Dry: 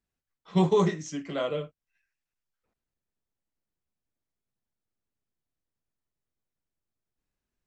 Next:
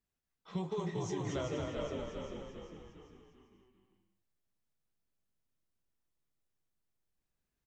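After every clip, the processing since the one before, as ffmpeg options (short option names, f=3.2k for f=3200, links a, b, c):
-filter_complex "[0:a]asplit=2[a][b];[b]asplit=5[c][d][e][f][g];[c]adelay=400,afreqshift=-51,volume=-9.5dB[h];[d]adelay=800,afreqshift=-102,volume=-16.1dB[i];[e]adelay=1200,afreqshift=-153,volume=-22.6dB[j];[f]adelay=1600,afreqshift=-204,volume=-29.2dB[k];[g]adelay=2000,afreqshift=-255,volume=-35.7dB[l];[h][i][j][k][l]amix=inputs=5:normalize=0[m];[a][m]amix=inputs=2:normalize=0,acompressor=threshold=-32dB:ratio=8,asplit=2[n][o];[o]aecho=0:1:230|379.5|476.7|539.8|580.9:0.631|0.398|0.251|0.158|0.1[p];[n][p]amix=inputs=2:normalize=0,volume=-3dB"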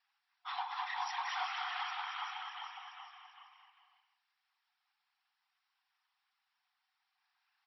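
-filter_complex "[0:a]asplit=2[a][b];[b]highpass=f=720:p=1,volume=22dB,asoftclip=type=tanh:threshold=-24.5dB[c];[a][c]amix=inputs=2:normalize=0,lowpass=f=2.8k:p=1,volume=-6dB,afftfilt=real='hypot(re,im)*cos(2*PI*random(0))':imag='hypot(re,im)*sin(2*PI*random(1))':win_size=512:overlap=0.75,afftfilt=real='re*between(b*sr/4096,720,5700)':imag='im*between(b*sr/4096,720,5700)':win_size=4096:overlap=0.75,volume=6.5dB"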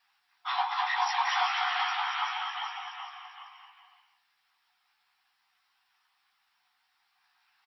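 -filter_complex "[0:a]asplit=2[a][b];[b]adelay=15,volume=-4dB[c];[a][c]amix=inputs=2:normalize=0,volume=8.5dB"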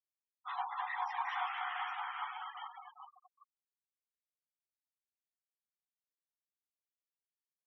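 -af "afftfilt=real='re*gte(hypot(re,im),0.0316)':imag='im*gte(hypot(re,im),0.0316)':win_size=1024:overlap=0.75,highpass=580,lowpass=2.3k,volume=-8dB"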